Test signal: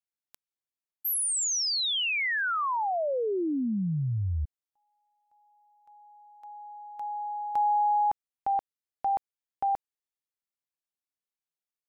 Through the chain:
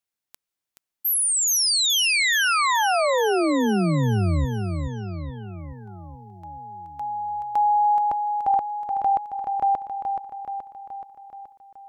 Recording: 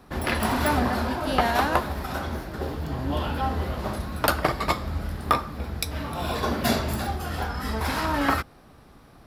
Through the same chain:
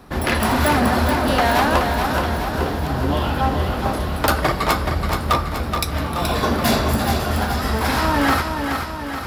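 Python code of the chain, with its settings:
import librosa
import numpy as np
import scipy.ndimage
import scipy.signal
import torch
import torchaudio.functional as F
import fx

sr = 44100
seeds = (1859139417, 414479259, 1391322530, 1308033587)

y = np.clip(10.0 ** (18.5 / 20.0) * x, -1.0, 1.0) / 10.0 ** (18.5 / 20.0)
y = fx.echo_feedback(y, sr, ms=426, feedback_pct=59, wet_db=-6)
y = y * librosa.db_to_amplitude(6.5)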